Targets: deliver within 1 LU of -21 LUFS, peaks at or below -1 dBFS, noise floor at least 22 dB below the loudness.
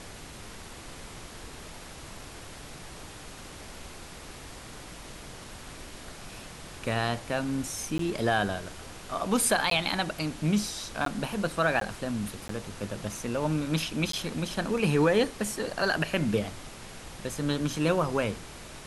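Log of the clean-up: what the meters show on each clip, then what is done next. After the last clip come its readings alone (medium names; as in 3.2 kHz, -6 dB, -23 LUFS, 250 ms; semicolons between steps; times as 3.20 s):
dropouts 6; longest dropout 13 ms; noise floor -45 dBFS; noise floor target -51 dBFS; loudness -29.0 LUFS; peak level -11.0 dBFS; loudness target -21.0 LUFS
-> interpolate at 7.98/9.70/11.05/11.80/12.48/14.12 s, 13 ms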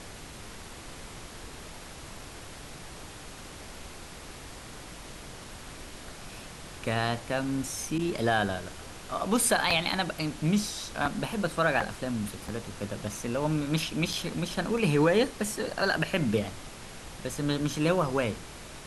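dropouts 0; noise floor -45 dBFS; noise floor target -51 dBFS
-> noise print and reduce 6 dB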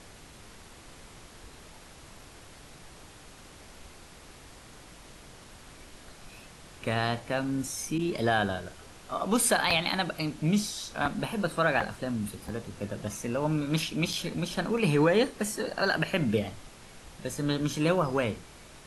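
noise floor -51 dBFS; loudness -29.0 LUFS; peak level -11.0 dBFS; loudness target -21.0 LUFS
-> trim +8 dB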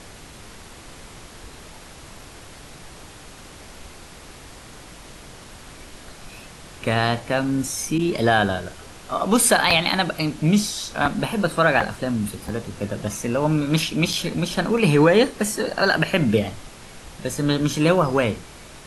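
loudness -21.0 LUFS; peak level -3.0 dBFS; noise floor -43 dBFS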